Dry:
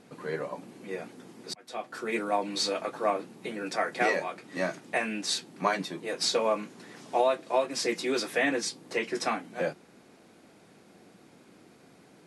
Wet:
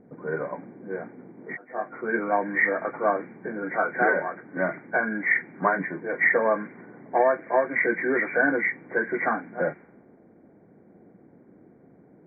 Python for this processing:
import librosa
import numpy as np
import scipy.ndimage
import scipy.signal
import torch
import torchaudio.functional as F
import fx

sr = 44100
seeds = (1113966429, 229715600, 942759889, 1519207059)

y = fx.freq_compress(x, sr, knee_hz=1400.0, ratio=4.0)
y = fx.env_lowpass(y, sr, base_hz=520.0, full_db=-22.5)
y = fx.doubler(y, sr, ms=20.0, db=-2, at=(1.35, 1.95))
y = F.gain(torch.from_numpy(y), 4.0).numpy()